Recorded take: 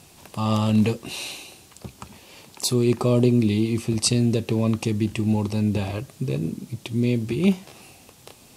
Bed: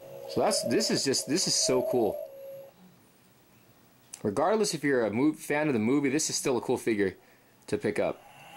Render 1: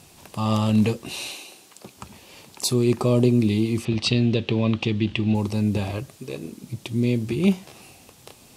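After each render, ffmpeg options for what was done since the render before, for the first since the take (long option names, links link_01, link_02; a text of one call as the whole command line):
ffmpeg -i in.wav -filter_complex "[0:a]asettb=1/sr,asplit=3[link_01][link_02][link_03];[link_01]atrim=end=1.304[link_04];[link_02]atrim=start=1.3:end=1.97,asetpts=PTS-STARTPTS,afade=type=in:duration=0.004:curve=qsin,afade=type=out:start_time=0.666:duration=0.004:curve=qsin,highpass=240[link_05];[link_03]atrim=start=1.966[link_06];[link_04][link_05]acrossfade=duration=0.004:curve1=hsin:curve2=qsin[link_07];[link_07][link_06]acrossfade=duration=0.004:curve1=qsin:curve2=hsin,asettb=1/sr,asplit=3[link_08][link_09][link_10];[link_08]atrim=end=3.854[link_11];[link_09]atrim=start=3.85:end=5.35,asetpts=PTS-STARTPTS,afade=type=in:duration=0.004:curve=qsin,afade=type=out:start_time=1.496:duration=0.004:curve=qsin,lowpass=frequency=3300:width_type=q:width=2.6[link_12];[link_10]atrim=start=5.346[link_13];[link_11][link_12]acrossfade=duration=0.004:curve1=hsin:curve2=qsin[link_14];[link_14][link_13]acrossfade=duration=0.004:curve1=qsin:curve2=hsin,asettb=1/sr,asplit=3[link_15][link_16][link_17];[link_15]atrim=end=6.164[link_18];[link_16]atrim=start=6.16:end=6.64,asetpts=PTS-STARTPTS,afade=type=in:duration=0.004:curve=qsin,afade=type=out:start_time=0.476:duration=0.004:curve=qsin,equalizer=frequency=130:width=0.7:gain=-14.5[link_19];[link_17]atrim=start=6.636[link_20];[link_18][link_19]acrossfade=duration=0.004:curve1=hsin:curve2=qsin[link_21];[link_21][link_20]acrossfade=duration=0.004:curve1=qsin:curve2=hsin" out.wav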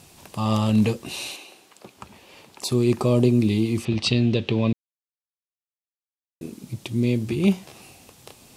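ffmpeg -i in.wav -filter_complex "[0:a]asettb=1/sr,asplit=3[link_01][link_02][link_03];[link_01]atrim=end=1.364[link_04];[link_02]atrim=start=1.36:end=2.72,asetpts=PTS-STARTPTS,afade=type=in:duration=0.004:curve=qsin,afade=type=out:start_time=1.356:duration=0.004:curve=qsin,bass=frequency=250:gain=-5,treble=frequency=4000:gain=-7[link_05];[link_03]atrim=start=2.716[link_06];[link_04][link_05]acrossfade=duration=0.004:curve1=hsin:curve2=qsin[link_07];[link_07][link_06]acrossfade=duration=0.004:curve1=qsin:curve2=hsin,asplit=3[link_08][link_09][link_10];[link_08]atrim=end=4.73,asetpts=PTS-STARTPTS,afade=type=out:start_time=4.726:duration=0.004:curve=hsin[link_11];[link_09]atrim=start=4.73:end=6.41,asetpts=PTS-STARTPTS,volume=0[link_12];[link_10]atrim=start=6.41,asetpts=PTS-STARTPTS,afade=type=in:duration=0.004:curve=hsin[link_13];[link_11][link_12][link_13]concat=n=3:v=0:a=1" out.wav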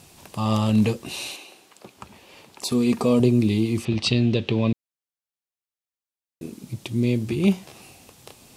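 ffmpeg -i in.wav -filter_complex "[0:a]asettb=1/sr,asplit=3[link_01][link_02][link_03];[link_01]atrim=end=2.704[link_04];[link_02]atrim=start=2.7:end=3.2,asetpts=PTS-STARTPTS,afade=type=in:duration=0.004:curve=qsin,afade=type=out:start_time=0.496:duration=0.004:curve=qsin,aecho=1:1:4.3:0.65,atrim=end_sample=22050[link_05];[link_03]atrim=start=3.196[link_06];[link_04][link_05]acrossfade=duration=0.004:curve1=hsin:curve2=qsin[link_07];[link_07][link_06]acrossfade=duration=0.004:curve1=qsin:curve2=hsin" out.wav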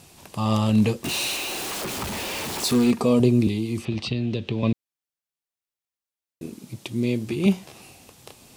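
ffmpeg -i in.wav -filter_complex "[0:a]asettb=1/sr,asplit=3[link_01][link_02][link_03];[link_01]atrim=end=1.044[link_04];[link_02]atrim=start=1.04:end=2.91,asetpts=PTS-STARTPTS,afade=type=in:duration=0.004:curve=qsin,afade=type=out:start_time=1.866:duration=0.004:curve=qsin,aeval=exprs='val(0)+0.5*0.0562*sgn(val(0))':channel_layout=same[link_05];[link_03]atrim=start=2.906[link_06];[link_04][link_05]acrossfade=duration=0.004:curve1=hsin:curve2=qsin[link_07];[link_07][link_06]acrossfade=duration=0.004:curve1=qsin:curve2=hsin,asettb=1/sr,asplit=3[link_08][link_09][link_10];[link_08]atrim=end=3.474[link_11];[link_09]atrim=start=3.47:end=4.63,asetpts=PTS-STARTPTS,afade=type=in:duration=0.004:curve=qsin,afade=type=out:start_time=1.156:duration=0.004:curve=qsin,acrossover=split=290|4200[link_12][link_13][link_14];[link_12]acompressor=threshold=-25dB:ratio=4[link_15];[link_13]acompressor=threshold=-31dB:ratio=4[link_16];[link_14]acompressor=threshold=-45dB:ratio=4[link_17];[link_15][link_16][link_17]amix=inputs=3:normalize=0[link_18];[link_10]atrim=start=4.626[link_19];[link_11][link_18]acrossfade=duration=0.004:curve1=hsin:curve2=qsin[link_20];[link_20][link_19]acrossfade=duration=0.004:curve1=qsin:curve2=hsin,asettb=1/sr,asplit=3[link_21][link_22][link_23];[link_21]atrim=end=6.594[link_24];[link_22]atrim=start=6.59:end=7.46,asetpts=PTS-STARTPTS,afade=type=in:duration=0.004:curve=qsin,afade=type=out:start_time=0.866:duration=0.004:curve=qsin,highpass=frequency=170:poles=1[link_25];[link_23]atrim=start=7.456[link_26];[link_24][link_25]acrossfade=duration=0.004:curve1=hsin:curve2=qsin[link_27];[link_27][link_26]acrossfade=duration=0.004:curve1=qsin:curve2=hsin" out.wav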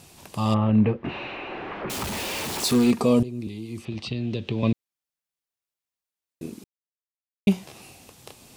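ffmpeg -i in.wav -filter_complex "[0:a]asettb=1/sr,asplit=3[link_01][link_02][link_03];[link_01]atrim=end=0.544[link_04];[link_02]atrim=start=0.54:end=1.9,asetpts=PTS-STARTPTS,afade=type=in:duration=0.004:curve=qsin,afade=type=out:start_time=1.356:duration=0.004:curve=qsin,lowpass=frequency=2200:width=0.5412,lowpass=frequency=2200:width=1.3066[link_05];[link_03]atrim=start=1.896[link_06];[link_04][link_05]acrossfade=duration=0.004:curve1=hsin:curve2=qsin[link_07];[link_07][link_06]acrossfade=duration=0.004:curve1=qsin:curve2=hsin,asplit=4[link_08][link_09][link_10][link_11];[link_08]atrim=end=3.23,asetpts=PTS-STARTPTS,afade=type=out:start_time=3.226:duration=0.004:curve=hsin:silence=0.112202[link_12];[link_09]atrim=start=3.23:end=6.64,asetpts=PTS-STARTPTS,afade=type=in:duration=1.43:silence=0.112202,afade=type=out:start_time=3.406:duration=0.004:curve=hsin[link_13];[link_10]atrim=start=6.64:end=7.47,asetpts=PTS-STARTPTS,volume=0[link_14];[link_11]atrim=start=7.47,asetpts=PTS-STARTPTS,afade=type=in:duration=0.004:curve=hsin[link_15];[link_12][link_13][link_14][link_15]concat=n=4:v=0:a=1" out.wav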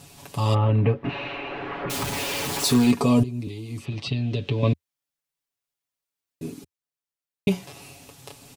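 ffmpeg -i in.wav -af "equalizer=frequency=82:width_type=o:width=0.62:gain=5,aecho=1:1:7.1:0.77" out.wav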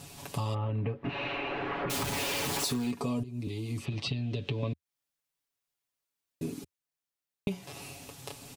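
ffmpeg -i in.wav -af "acompressor=threshold=-30dB:ratio=6" out.wav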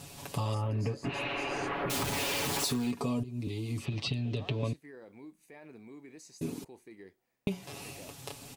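ffmpeg -i in.wav -i bed.wav -filter_complex "[1:a]volume=-24dB[link_01];[0:a][link_01]amix=inputs=2:normalize=0" out.wav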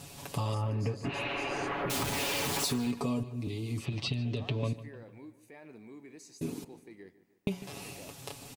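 ffmpeg -i in.wav -filter_complex "[0:a]asplit=2[link_01][link_02];[link_02]adelay=150,lowpass=frequency=3600:poles=1,volume=-16dB,asplit=2[link_03][link_04];[link_04]adelay=150,lowpass=frequency=3600:poles=1,volume=0.52,asplit=2[link_05][link_06];[link_06]adelay=150,lowpass=frequency=3600:poles=1,volume=0.52,asplit=2[link_07][link_08];[link_08]adelay=150,lowpass=frequency=3600:poles=1,volume=0.52,asplit=2[link_09][link_10];[link_10]adelay=150,lowpass=frequency=3600:poles=1,volume=0.52[link_11];[link_01][link_03][link_05][link_07][link_09][link_11]amix=inputs=6:normalize=0" out.wav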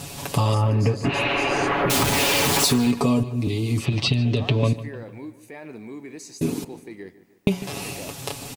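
ffmpeg -i in.wav -af "volume=12dB" out.wav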